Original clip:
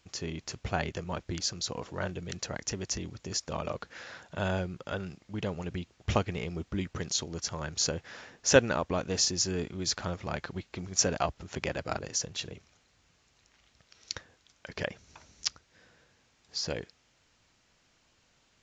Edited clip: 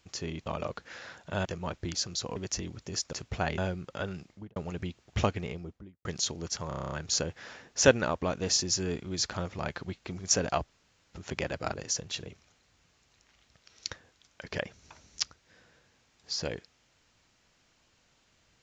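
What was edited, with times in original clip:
0.46–0.91 s: swap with 3.51–4.50 s
1.82–2.74 s: delete
5.21–5.48 s: studio fade out
6.21–6.97 s: studio fade out
7.60 s: stutter 0.03 s, 9 plays
11.38 s: insert room tone 0.43 s

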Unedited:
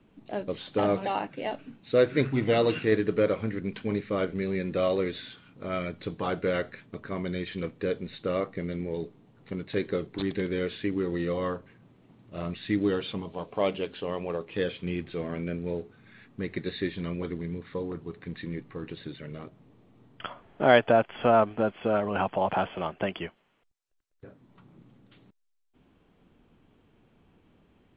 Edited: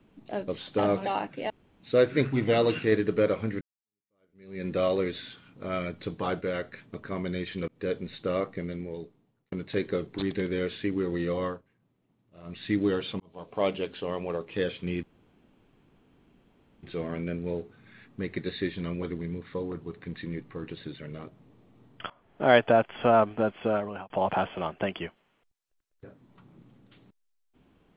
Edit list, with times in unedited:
1.50–1.80 s: room tone
3.61–4.65 s: fade in exponential
6.41–6.72 s: gain -3.5 dB
7.68–7.98 s: fade in equal-power
8.50–9.52 s: fade out
11.44–12.62 s: dip -15 dB, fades 0.19 s
13.20–13.64 s: fade in
15.03 s: insert room tone 1.80 s
20.30–20.76 s: fade in, from -18.5 dB
21.88–22.30 s: fade out

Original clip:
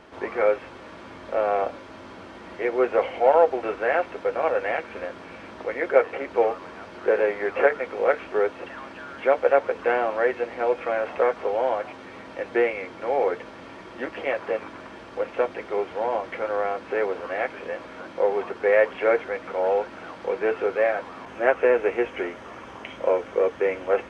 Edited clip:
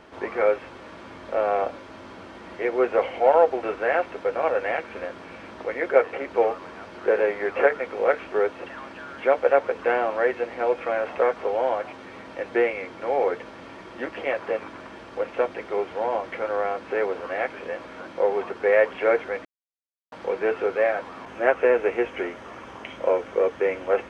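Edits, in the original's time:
19.45–20.12 s: mute

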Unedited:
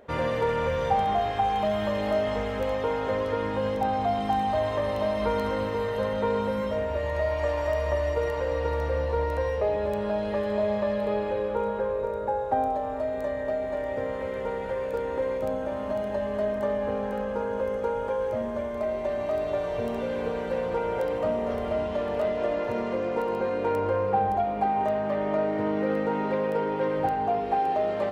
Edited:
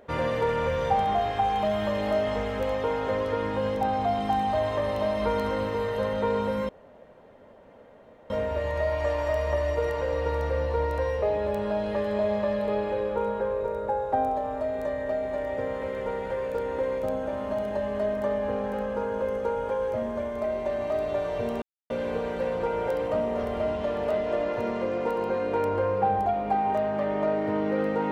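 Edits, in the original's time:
6.69 s: insert room tone 1.61 s
20.01 s: insert silence 0.28 s

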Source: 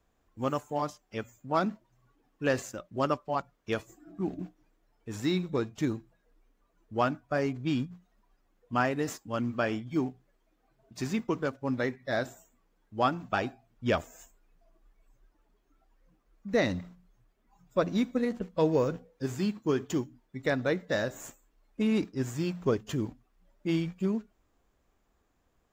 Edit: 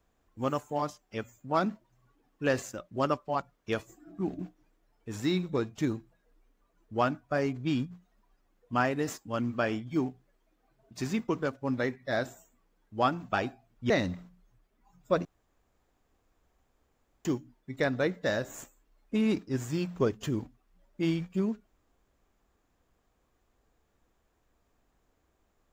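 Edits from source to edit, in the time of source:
13.90–16.56 s: delete
17.91–19.91 s: room tone

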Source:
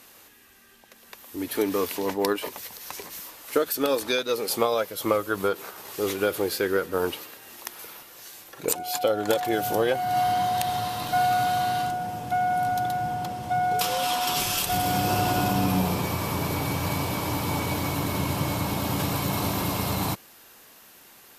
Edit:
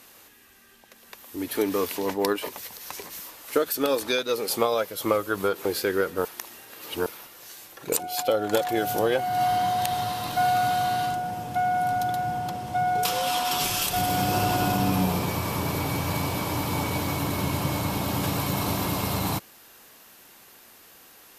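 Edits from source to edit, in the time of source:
5.65–6.41 s: delete
7.01–7.82 s: reverse

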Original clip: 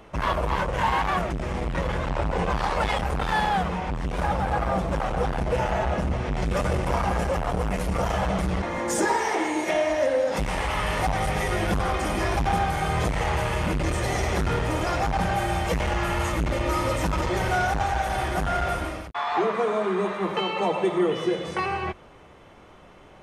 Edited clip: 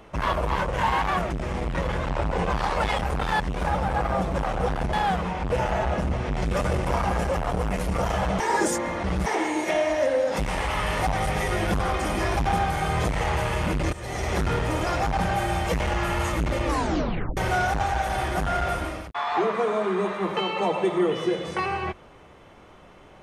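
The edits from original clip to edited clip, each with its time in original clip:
3.40–3.97 s: move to 5.50 s
8.40–9.26 s: reverse
13.93–14.37 s: fade in, from -15.5 dB
16.65 s: tape stop 0.72 s

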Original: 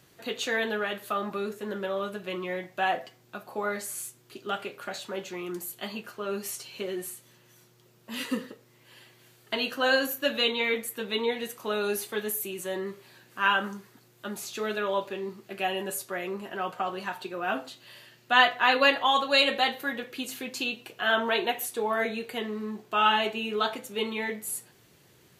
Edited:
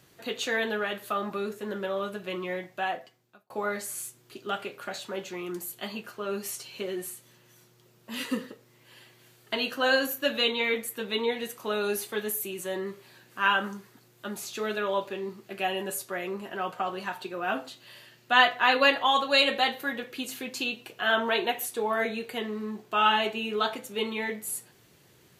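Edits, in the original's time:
2.53–3.50 s: fade out

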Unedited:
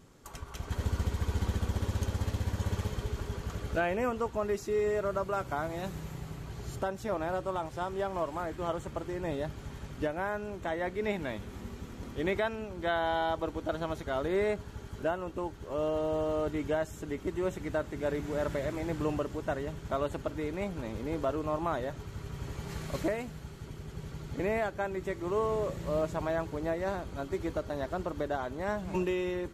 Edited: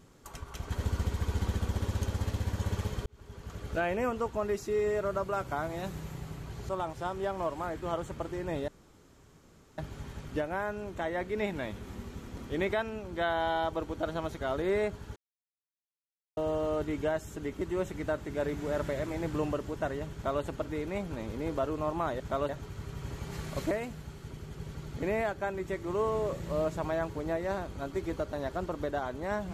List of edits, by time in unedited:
3.06–3.90 s: fade in
6.69–7.45 s: delete
9.44 s: insert room tone 1.10 s
14.82–16.03 s: mute
19.80–20.09 s: copy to 21.86 s

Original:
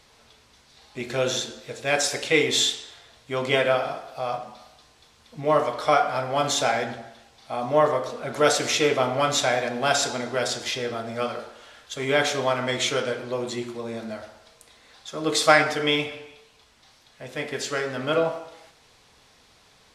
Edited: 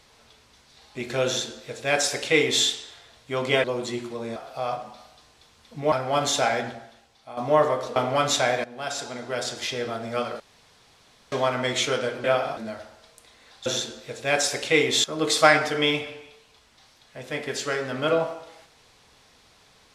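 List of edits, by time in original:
1.26–2.64 s: copy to 15.09 s
3.64–3.97 s: swap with 13.28–14.00 s
5.53–6.15 s: delete
6.86–7.60 s: fade out, to -11.5 dB
8.19–9.00 s: delete
9.68–10.92 s: fade in, from -15 dB
11.44–12.36 s: room tone

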